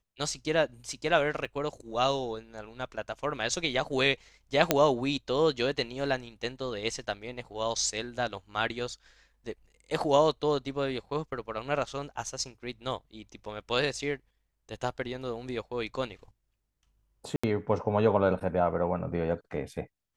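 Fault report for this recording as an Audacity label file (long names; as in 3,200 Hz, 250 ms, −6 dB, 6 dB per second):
1.450000	1.450000	drop-out 2.1 ms
4.710000	4.710000	click −5 dBFS
17.360000	17.430000	drop-out 75 ms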